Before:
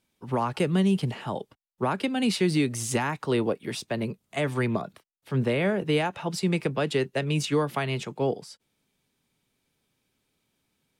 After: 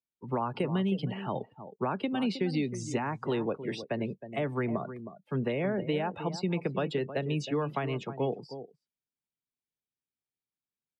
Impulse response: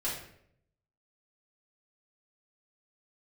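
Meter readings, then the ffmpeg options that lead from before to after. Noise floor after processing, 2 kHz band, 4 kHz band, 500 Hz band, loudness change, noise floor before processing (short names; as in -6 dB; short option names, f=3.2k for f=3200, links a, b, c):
under -85 dBFS, -7.5 dB, -8.5 dB, -4.5 dB, -5.0 dB, -77 dBFS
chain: -filter_complex "[0:a]acrossover=split=140|1200|6800[a][b][c][d];[a]acompressor=threshold=-44dB:ratio=4[e];[b]acompressor=threshold=-26dB:ratio=4[f];[c]acompressor=threshold=-38dB:ratio=4[g];[d]acompressor=threshold=-54dB:ratio=4[h];[e][f][g][h]amix=inputs=4:normalize=0,asplit=2[i][j];[j]adelay=314.9,volume=-11dB,highshelf=f=4k:g=-7.08[k];[i][k]amix=inputs=2:normalize=0,afftdn=nr=26:nf=-42,volume=-1.5dB"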